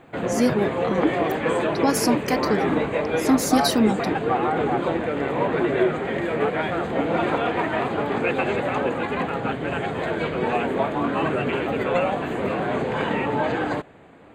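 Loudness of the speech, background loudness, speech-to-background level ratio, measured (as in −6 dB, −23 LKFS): −24.0 LKFS, −24.0 LKFS, 0.0 dB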